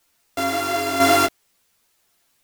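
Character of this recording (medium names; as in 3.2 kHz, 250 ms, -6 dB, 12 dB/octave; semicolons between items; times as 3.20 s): a buzz of ramps at a fixed pitch in blocks of 64 samples; chopped level 1 Hz, depth 60%, duty 25%; a quantiser's noise floor 12-bit, dither triangular; a shimmering, thickened sound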